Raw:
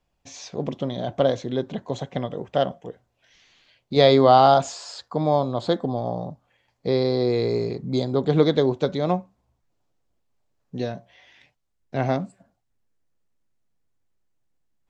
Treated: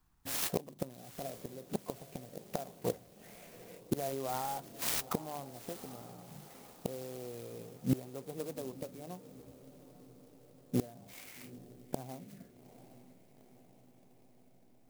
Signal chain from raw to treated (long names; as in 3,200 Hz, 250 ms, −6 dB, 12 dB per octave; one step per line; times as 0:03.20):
high-shelf EQ 4,200 Hz +7 dB
mains-hum notches 50/100/150/200 Hz
gate with flip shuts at −20 dBFS, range −25 dB
formants moved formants +2 semitones
phaser swept by the level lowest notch 550 Hz, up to 2,800 Hz, full sweep at −38.5 dBFS
feedback delay with all-pass diffusion 843 ms, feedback 61%, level −16 dB
converter with an unsteady clock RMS 0.076 ms
level +3 dB